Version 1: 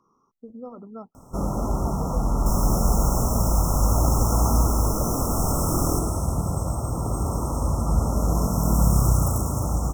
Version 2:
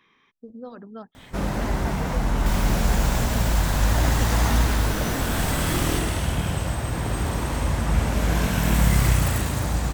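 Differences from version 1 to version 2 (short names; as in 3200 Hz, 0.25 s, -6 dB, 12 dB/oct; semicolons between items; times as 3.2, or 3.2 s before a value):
second sound -4.5 dB; master: remove brick-wall FIR band-stop 1400–5200 Hz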